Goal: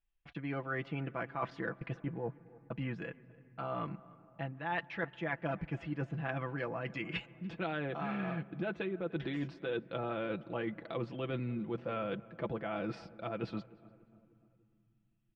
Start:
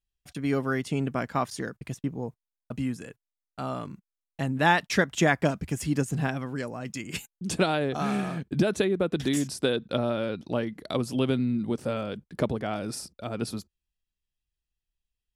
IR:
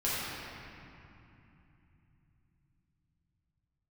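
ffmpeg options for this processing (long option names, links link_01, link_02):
-filter_complex "[0:a]lowpass=frequency=2800:width=0.5412,lowpass=frequency=2800:width=1.3066,equalizer=frequency=130:width=0.3:gain=-5.5,aecho=1:1:6:0.62,areverse,acompressor=threshold=-35dB:ratio=10,areverse,asplit=2[link_01][link_02];[link_02]adelay=297,lowpass=frequency=1600:poles=1,volume=-20.5dB,asplit=2[link_03][link_04];[link_04]adelay=297,lowpass=frequency=1600:poles=1,volume=0.51,asplit=2[link_05][link_06];[link_06]adelay=297,lowpass=frequency=1600:poles=1,volume=0.51,asplit=2[link_07][link_08];[link_08]adelay=297,lowpass=frequency=1600:poles=1,volume=0.51[link_09];[link_01][link_03][link_05][link_07][link_09]amix=inputs=5:normalize=0,asplit=2[link_10][link_11];[1:a]atrim=start_sample=2205,lowpass=2200,adelay=129[link_12];[link_11][link_12]afir=irnorm=-1:irlink=0,volume=-31dB[link_13];[link_10][link_13]amix=inputs=2:normalize=0,volume=1.5dB"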